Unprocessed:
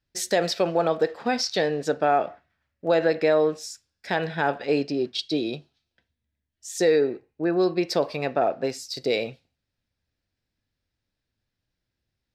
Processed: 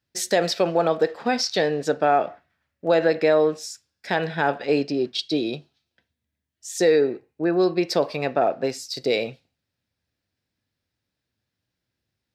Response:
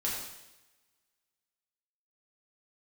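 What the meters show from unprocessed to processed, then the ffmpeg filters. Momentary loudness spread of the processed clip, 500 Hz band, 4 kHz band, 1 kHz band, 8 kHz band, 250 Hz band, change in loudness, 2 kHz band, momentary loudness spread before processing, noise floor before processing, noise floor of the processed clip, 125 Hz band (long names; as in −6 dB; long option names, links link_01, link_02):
12 LU, +2.0 dB, +2.0 dB, +2.0 dB, +2.0 dB, +2.0 dB, +2.0 dB, +2.0 dB, 12 LU, −83 dBFS, −83 dBFS, +1.5 dB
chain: -af "highpass=83,volume=2dB"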